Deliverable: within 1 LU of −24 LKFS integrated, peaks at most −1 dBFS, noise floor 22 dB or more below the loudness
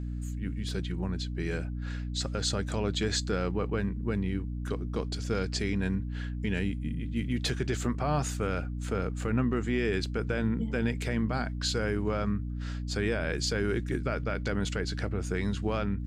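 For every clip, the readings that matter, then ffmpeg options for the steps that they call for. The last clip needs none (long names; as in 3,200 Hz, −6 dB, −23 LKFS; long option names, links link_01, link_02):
mains hum 60 Hz; hum harmonics up to 300 Hz; level of the hum −32 dBFS; integrated loudness −31.5 LKFS; sample peak −17.0 dBFS; target loudness −24.0 LKFS
→ -af "bandreject=frequency=60:width_type=h:width=4,bandreject=frequency=120:width_type=h:width=4,bandreject=frequency=180:width_type=h:width=4,bandreject=frequency=240:width_type=h:width=4,bandreject=frequency=300:width_type=h:width=4"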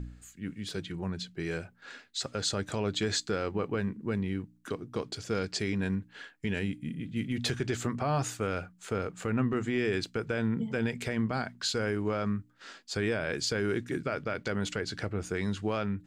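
mains hum none found; integrated loudness −33.0 LKFS; sample peak −17.5 dBFS; target loudness −24.0 LKFS
→ -af "volume=9dB"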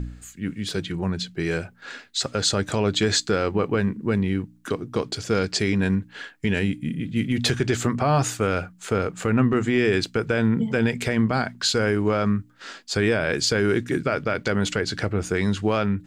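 integrated loudness −24.0 LKFS; sample peak −8.5 dBFS; background noise floor −52 dBFS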